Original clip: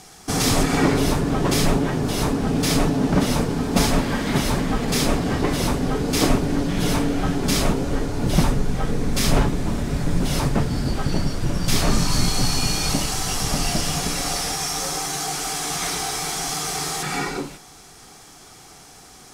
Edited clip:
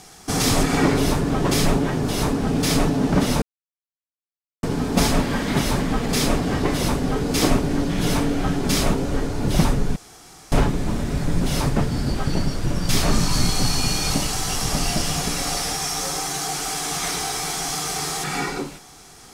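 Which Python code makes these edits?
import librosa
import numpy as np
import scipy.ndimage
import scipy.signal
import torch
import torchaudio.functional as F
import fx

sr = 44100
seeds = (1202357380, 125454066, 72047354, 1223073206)

y = fx.edit(x, sr, fx.insert_silence(at_s=3.42, length_s=1.21),
    fx.room_tone_fill(start_s=8.75, length_s=0.56), tone=tone)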